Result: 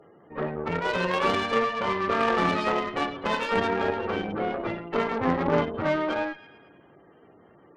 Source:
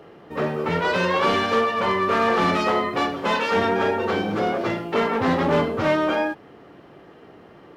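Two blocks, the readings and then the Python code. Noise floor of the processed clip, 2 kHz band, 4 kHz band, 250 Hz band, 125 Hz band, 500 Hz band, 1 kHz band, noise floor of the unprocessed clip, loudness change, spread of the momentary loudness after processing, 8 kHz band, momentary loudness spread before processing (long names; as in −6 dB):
−56 dBFS, −4.5 dB, −5.0 dB, −5.0 dB, −4.5 dB, −5.0 dB, −4.5 dB, −48 dBFS, −4.5 dB, 7 LU, can't be measured, 6 LU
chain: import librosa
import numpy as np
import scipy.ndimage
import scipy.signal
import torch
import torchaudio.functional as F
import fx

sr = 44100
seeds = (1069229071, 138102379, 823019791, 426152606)

y = fx.echo_wet_highpass(x, sr, ms=112, feedback_pct=60, hz=2200.0, wet_db=-7)
y = fx.spec_gate(y, sr, threshold_db=-20, keep='strong')
y = fx.cheby_harmonics(y, sr, harmonics=(3, 4, 6, 8), levels_db=(-14, -25, -29, -29), full_scale_db=-10.0)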